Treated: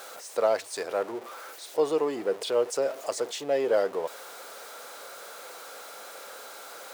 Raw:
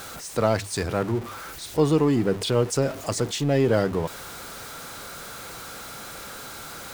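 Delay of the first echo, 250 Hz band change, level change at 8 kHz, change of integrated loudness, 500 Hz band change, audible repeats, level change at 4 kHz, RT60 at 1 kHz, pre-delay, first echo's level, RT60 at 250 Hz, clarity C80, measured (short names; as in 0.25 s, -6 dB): none, -13.5 dB, -6.0 dB, -4.5 dB, -1.5 dB, none, -6.0 dB, none, none, none, none, none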